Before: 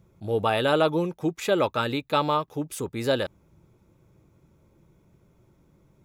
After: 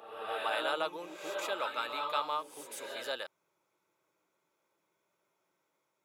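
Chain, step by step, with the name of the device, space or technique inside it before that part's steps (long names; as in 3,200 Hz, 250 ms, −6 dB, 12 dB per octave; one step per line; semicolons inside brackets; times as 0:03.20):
ghost voice (reversed playback; convolution reverb RT60 1.0 s, pre-delay 115 ms, DRR 3 dB; reversed playback; high-pass filter 790 Hz 12 dB per octave)
level −8 dB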